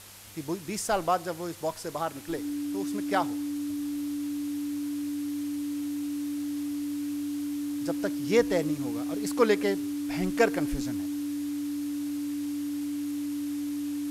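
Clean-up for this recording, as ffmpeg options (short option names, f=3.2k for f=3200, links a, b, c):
-af "bandreject=f=100.5:t=h:w=4,bandreject=f=201:t=h:w=4,bandreject=f=301.5:t=h:w=4,bandreject=f=290:w=30,afwtdn=0.0045"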